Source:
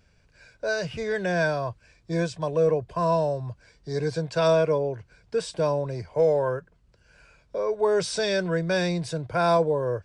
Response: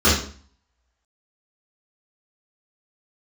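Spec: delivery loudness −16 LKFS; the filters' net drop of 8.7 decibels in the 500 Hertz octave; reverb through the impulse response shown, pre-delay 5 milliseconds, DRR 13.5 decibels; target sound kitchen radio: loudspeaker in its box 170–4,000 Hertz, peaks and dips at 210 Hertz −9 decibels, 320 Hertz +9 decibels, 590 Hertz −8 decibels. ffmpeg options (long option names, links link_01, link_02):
-filter_complex "[0:a]equalizer=frequency=500:width_type=o:gain=-8,asplit=2[link_01][link_02];[1:a]atrim=start_sample=2205,adelay=5[link_03];[link_02][link_03]afir=irnorm=-1:irlink=0,volume=-35.5dB[link_04];[link_01][link_04]amix=inputs=2:normalize=0,highpass=170,equalizer=frequency=210:width_type=q:width=4:gain=-9,equalizer=frequency=320:width_type=q:width=4:gain=9,equalizer=frequency=590:width_type=q:width=4:gain=-8,lowpass=frequency=4000:width=0.5412,lowpass=frequency=4000:width=1.3066,volume=15dB"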